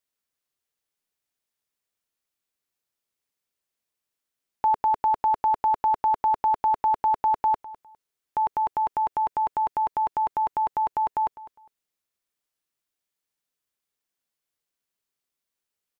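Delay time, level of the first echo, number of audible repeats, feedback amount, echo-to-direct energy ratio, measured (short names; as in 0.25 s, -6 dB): 0.203 s, -17.5 dB, 2, 22%, -17.5 dB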